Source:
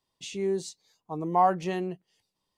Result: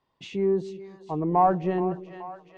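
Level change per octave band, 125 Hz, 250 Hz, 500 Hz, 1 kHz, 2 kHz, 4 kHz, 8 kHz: +5.5 dB, +5.5 dB, +4.0 dB, +2.0 dB, -1.0 dB, no reading, under -10 dB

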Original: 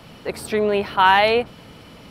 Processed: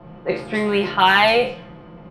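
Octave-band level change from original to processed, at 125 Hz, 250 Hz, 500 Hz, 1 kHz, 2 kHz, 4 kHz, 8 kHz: +3.5 dB, +4.0 dB, 0.0 dB, -0.5 dB, +2.5 dB, +3.5 dB, no reading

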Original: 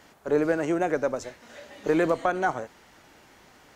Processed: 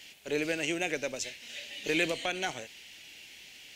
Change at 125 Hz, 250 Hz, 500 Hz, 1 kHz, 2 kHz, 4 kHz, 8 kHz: -8.0 dB, -8.5 dB, -9.0 dB, -11.5 dB, 0.0 dB, +11.5 dB, +7.0 dB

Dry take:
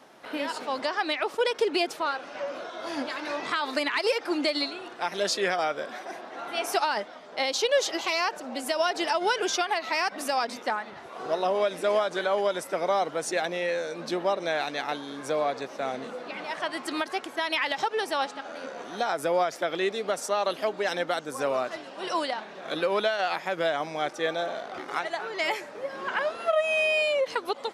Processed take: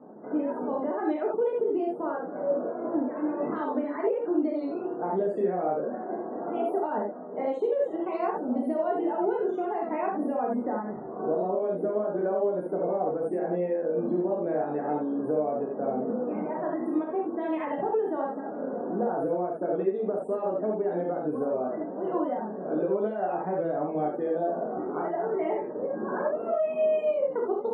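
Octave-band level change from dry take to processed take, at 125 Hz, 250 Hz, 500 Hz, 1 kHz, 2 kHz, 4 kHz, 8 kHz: +6.5 dB, +6.5 dB, +1.5 dB, -3.0 dB, -16.0 dB, under -30 dB, under -30 dB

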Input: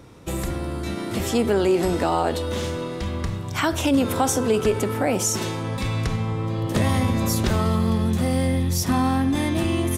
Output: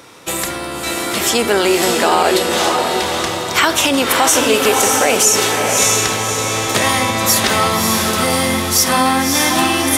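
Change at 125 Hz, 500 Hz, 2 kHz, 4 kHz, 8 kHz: -4.0 dB, +7.0 dB, +14.5 dB, +16.0 dB, +15.5 dB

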